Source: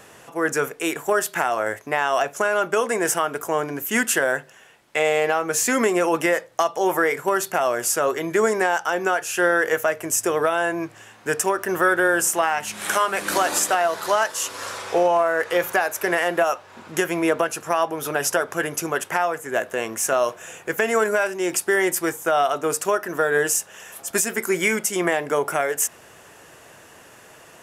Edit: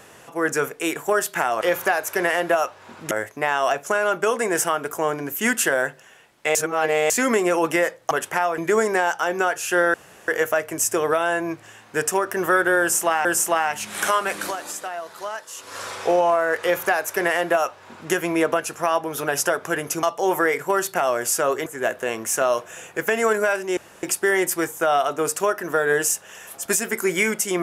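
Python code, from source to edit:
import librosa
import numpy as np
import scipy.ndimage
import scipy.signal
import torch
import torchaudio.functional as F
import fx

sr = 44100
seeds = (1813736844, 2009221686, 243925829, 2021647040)

y = fx.edit(x, sr, fx.reverse_span(start_s=5.05, length_s=0.55),
    fx.swap(start_s=6.61, length_s=1.63, other_s=18.9, other_length_s=0.47),
    fx.insert_room_tone(at_s=9.6, length_s=0.34),
    fx.repeat(start_s=12.12, length_s=0.45, count=2),
    fx.fade_down_up(start_s=13.14, length_s=1.6, db=-11.0, fade_s=0.3),
    fx.duplicate(start_s=15.49, length_s=1.5, to_s=1.61),
    fx.insert_room_tone(at_s=21.48, length_s=0.26), tone=tone)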